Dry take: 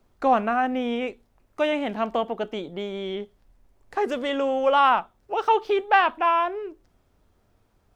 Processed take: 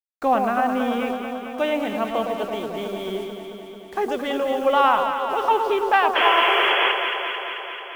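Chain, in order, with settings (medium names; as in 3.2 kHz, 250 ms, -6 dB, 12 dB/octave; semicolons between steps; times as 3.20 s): bit crusher 8-bit; painted sound noise, 6.15–6.92 s, 350–3400 Hz -21 dBFS; echo whose repeats swap between lows and highs 110 ms, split 1.1 kHz, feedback 84%, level -5 dB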